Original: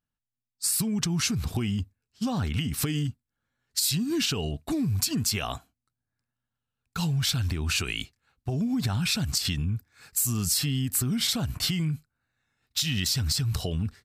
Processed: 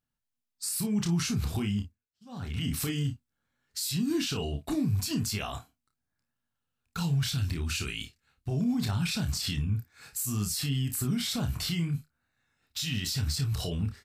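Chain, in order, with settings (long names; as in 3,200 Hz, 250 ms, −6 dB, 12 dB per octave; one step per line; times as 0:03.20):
0:07.30–0:08.51: parametric band 820 Hz −6 dB 1.9 octaves
brickwall limiter −24 dBFS, peak gain reduction 10 dB
0:01.69–0:02.64: duck −24 dB, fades 0.39 s
ambience of single reflections 29 ms −6 dB, 54 ms −14 dB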